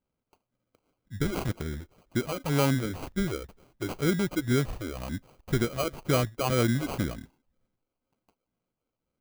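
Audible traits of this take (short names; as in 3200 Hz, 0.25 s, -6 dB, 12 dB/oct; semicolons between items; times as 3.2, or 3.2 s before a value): phasing stages 4, 2 Hz, lowest notch 140–3900 Hz; aliases and images of a low sample rate 1800 Hz, jitter 0%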